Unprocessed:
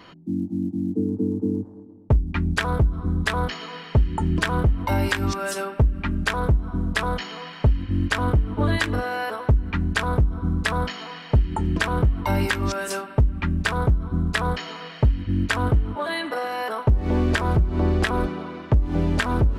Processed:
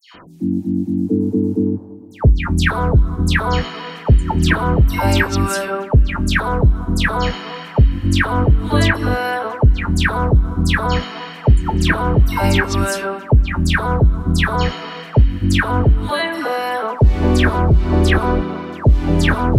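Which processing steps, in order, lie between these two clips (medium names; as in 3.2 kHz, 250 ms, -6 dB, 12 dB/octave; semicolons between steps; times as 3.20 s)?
phase dispersion lows, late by 145 ms, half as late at 2 kHz; trim +7 dB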